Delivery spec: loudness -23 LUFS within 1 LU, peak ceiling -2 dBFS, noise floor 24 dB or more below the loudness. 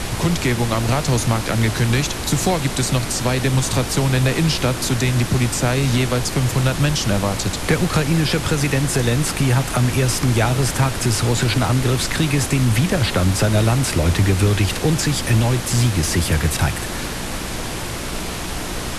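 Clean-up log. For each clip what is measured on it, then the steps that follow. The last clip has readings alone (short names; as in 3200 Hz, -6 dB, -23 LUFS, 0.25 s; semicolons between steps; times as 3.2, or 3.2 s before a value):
hum 60 Hz; harmonics up to 360 Hz; hum level -32 dBFS; noise floor -26 dBFS; noise floor target -43 dBFS; loudness -19.0 LUFS; peak -5.0 dBFS; loudness target -23.0 LUFS
-> de-hum 60 Hz, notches 6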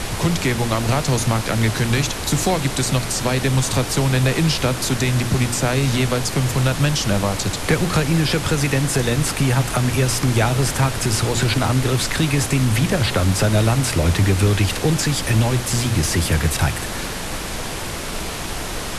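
hum none; noise floor -27 dBFS; noise floor target -44 dBFS
-> noise print and reduce 17 dB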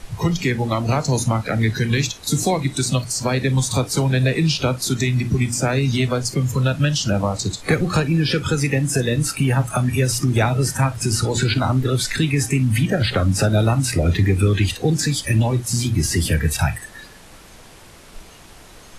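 noise floor -44 dBFS; loudness -19.5 LUFS; peak -6.0 dBFS; loudness target -23.0 LUFS
-> gain -3.5 dB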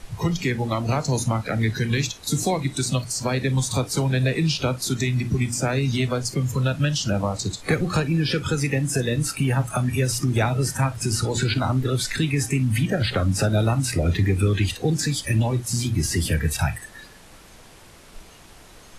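loudness -23.0 LUFS; peak -9.5 dBFS; noise floor -47 dBFS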